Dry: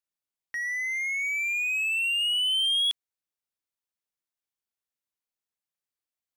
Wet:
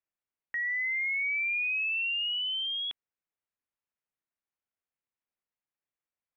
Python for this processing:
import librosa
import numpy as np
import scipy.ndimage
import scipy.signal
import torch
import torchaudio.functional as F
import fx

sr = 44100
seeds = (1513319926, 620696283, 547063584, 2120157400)

y = scipy.signal.sosfilt(scipy.signal.butter(4, 2600.0, 'lowpass', fs=sr, output='sos'), x)